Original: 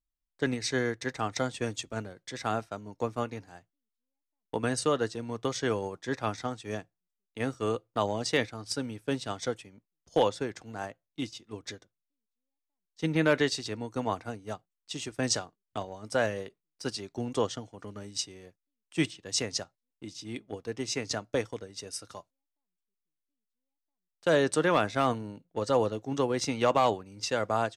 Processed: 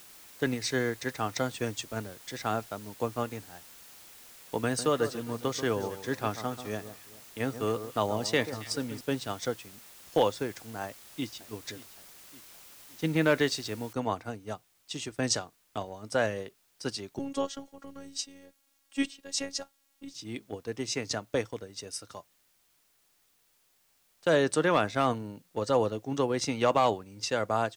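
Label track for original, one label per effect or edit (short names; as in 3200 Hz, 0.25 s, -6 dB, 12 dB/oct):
4.650000	9.010000	echo with dull and thin repeats by turns 0.136 s, split 1500 Hz, feedback 56%, level -11 dB
10.830000	11.410000	echo throw 0.57 s, feedback 60%, level -18 dB
13.930000	13.930000	noise floor step -52 dB -69 dB
17.190000	20.140000	robotiser 276 Hz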